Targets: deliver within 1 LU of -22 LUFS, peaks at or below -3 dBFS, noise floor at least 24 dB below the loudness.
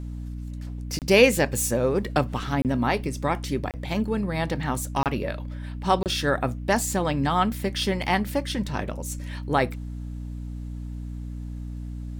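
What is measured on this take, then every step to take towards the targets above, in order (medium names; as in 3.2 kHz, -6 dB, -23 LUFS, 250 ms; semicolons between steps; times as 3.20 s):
dropouts 5; longest dropout 28 ms; hum 60 Hz; highest harmonic 300 Hz; hum level -31 dBFS; loudness -25.0 LUFS; peak level -4.0 dBFS; loudness target -22.0 LUFS
-> interpolate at 0.99/2.62/3.71/5.03/6.03 s, 28 ms; de-hum 60 Hz, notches 5; trim +3 dB; peak limiter -3 dBFS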